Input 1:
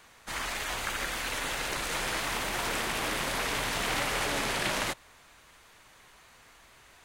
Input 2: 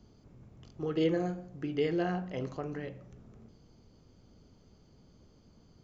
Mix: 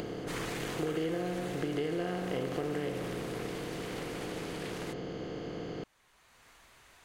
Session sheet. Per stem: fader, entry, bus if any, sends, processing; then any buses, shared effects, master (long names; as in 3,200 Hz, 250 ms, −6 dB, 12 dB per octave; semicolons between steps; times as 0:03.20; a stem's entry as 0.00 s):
−3.0 dB, 0.00 s, no send, automatic ducking −12 dB, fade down 1.80 s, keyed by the second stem
−0.5 dB, 0.00 s, no send, compressor on every frequency bin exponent 0.4; upward compression, threshold −37 dBFS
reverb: not used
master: downward compressor 6 to 1, threshold −30 dBFS, peak gain reduction 8 dB